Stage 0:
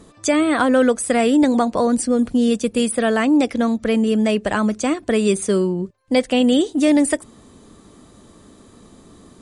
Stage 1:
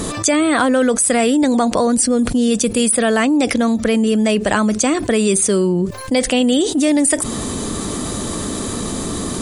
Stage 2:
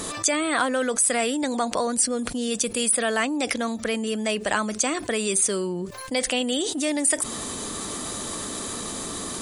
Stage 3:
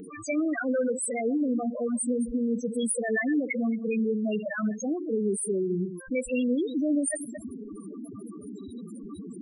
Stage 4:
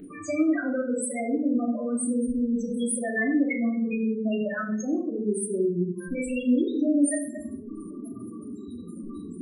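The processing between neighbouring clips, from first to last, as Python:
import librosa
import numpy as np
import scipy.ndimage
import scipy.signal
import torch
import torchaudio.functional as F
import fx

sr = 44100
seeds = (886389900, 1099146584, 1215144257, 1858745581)

y1 = fx.high_shelf(x, sr, hz=4900.0, db=8.5)
y1 = fx.env_flatten(y1, sr, amount_pct=70)
y1 = y1 * 10.0 ** (-1.0 / 20.0)
y2 = fx.low_shelf(y1, sr, hz=420.0, db=-11.5)
y2 = y2 * 10.0 ** (-4.5 / 20.0)
y3 = fx.reverse_delay(y2, sr, ms=125, wet_db=-8.5)
y3 = fx.spec_topn(y3, sr, count=4)
y3 = fx.fixed_phaser(y3, sr, hz=2300.0, stages=4)
y3 = y3 * 10.0 ** (2.5 / 20.0)
y4 = fx.room_shoebox(y3, sr, seeds[0], volume_m3=660.0, walls='furnished', distance_m=2.7)
y4 = y4 * 10.0 ** (-3.5 / 20.0)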